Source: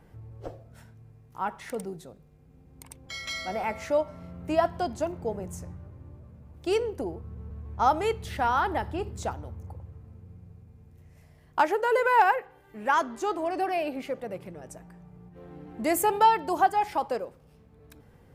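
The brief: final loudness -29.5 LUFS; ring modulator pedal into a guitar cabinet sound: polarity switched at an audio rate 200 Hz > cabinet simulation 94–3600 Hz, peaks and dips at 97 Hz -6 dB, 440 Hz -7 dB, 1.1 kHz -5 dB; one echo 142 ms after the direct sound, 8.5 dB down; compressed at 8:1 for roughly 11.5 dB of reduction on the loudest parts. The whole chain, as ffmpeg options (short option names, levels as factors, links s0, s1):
-af "acompressor=threshold=0.0398:ratio=8,aecho=1:1:142:0.376,aeval=exprs='val(0)*sgn(sin(2*PI*200*n/s))':c=same,highpass=94,equalizer=f=97:t=q:w=4:g=-6,equalizer=f=440:t=q:w=4:g=-7,equalizer=f=1100:t=q:w=4:g=-5,lowpass=f=3600:w=0.5412,lowpass=f=3600:w=1.3066,volume=2.11"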